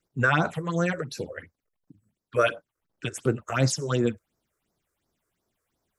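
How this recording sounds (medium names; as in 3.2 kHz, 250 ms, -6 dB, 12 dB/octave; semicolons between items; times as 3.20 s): phasing stages 6, 2.8 Hz, lowest notch 200–3100 Hz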